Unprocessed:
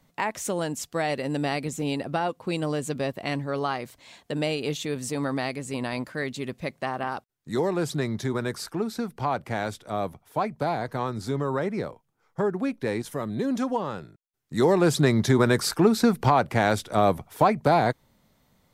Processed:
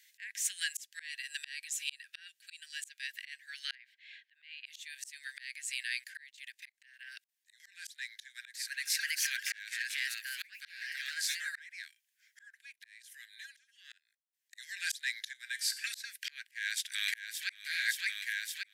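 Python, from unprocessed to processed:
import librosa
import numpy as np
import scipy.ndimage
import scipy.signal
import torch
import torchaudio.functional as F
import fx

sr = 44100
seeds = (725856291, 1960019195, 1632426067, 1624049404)

y = fx.notch(x, sr, hz=2100.0, q=12.0, at=(1.08, 2.81))
y = fx.air_absorb(y, sr, metres=380.0, at=(3.75, 4.66))
y = fx.level_steps(y, sr, step_db=18, at=(5.83, 7.6))
y = fx.echo_pitch(y, sr, ms=358, semitones=2, count=2, db_per_echo=-3.0, at=(8.12, 11.59))
y = fx.level_steps(y, sr, step_db=18, at=(12.59, 14.58))
y = fx.comb_fb(y, sr, f0_hz=260.0, decay_s=0.62, harmonics='all', damping=0.0, mix_pct=70, at=(15.33, 15.84))
y = fx.echo_throw(y, sr, start_s=16.45, length_s=1.1, ms=570, feedback_pct=60, wet_db=-5.0)
y = scipy.signal.sosfilt(scipy.signal.cheby1(8, 1.0, 1600.0, 'highpass', fs=sr, output='sos'), y)
y = fx.auto_swell(y, sr, attack_ms=632.0)
y = F.gain(torch.from_numpy(y), 8.5).numpy()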